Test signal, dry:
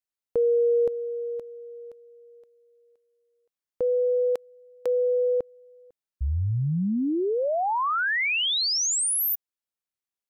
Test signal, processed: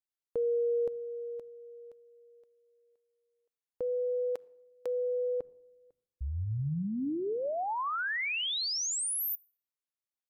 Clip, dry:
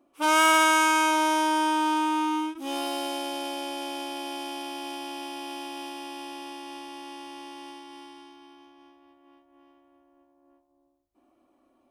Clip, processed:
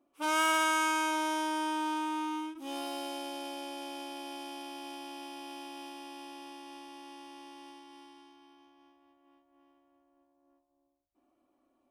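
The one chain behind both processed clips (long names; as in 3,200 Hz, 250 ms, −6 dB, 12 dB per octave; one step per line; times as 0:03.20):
rectangular room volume 3,000 cubic metres, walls furnished, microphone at 0.31 metres
level −8 dB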